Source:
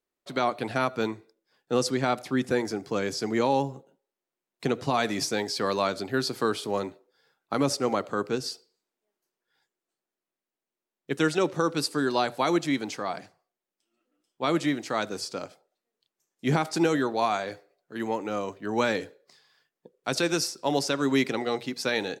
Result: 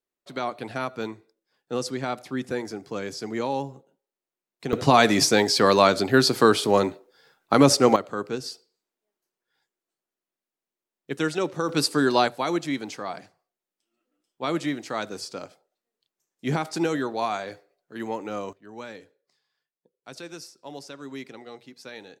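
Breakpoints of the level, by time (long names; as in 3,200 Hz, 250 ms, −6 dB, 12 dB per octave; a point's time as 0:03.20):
−3.5 dB
from 0:04.73 +9 dB
from 0:07.96 −1.5 dB
from 0:11.69 +5 dB
from 0:12.28 −1.5 dB
from 0:18.53 −14 dB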